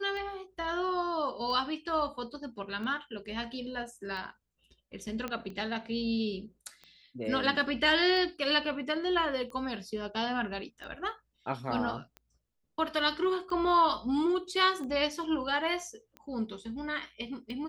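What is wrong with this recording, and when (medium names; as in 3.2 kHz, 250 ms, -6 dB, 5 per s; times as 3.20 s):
tick 45 rpm -31 dBFS
5.28 s: pop -21 dBFS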